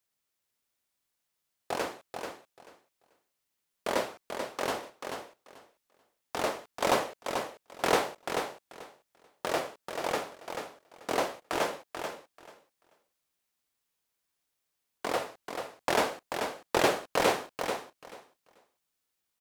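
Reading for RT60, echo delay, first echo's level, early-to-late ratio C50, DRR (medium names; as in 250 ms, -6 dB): no reverb, 437 ms, -6.5 dB, no reverb, no reverb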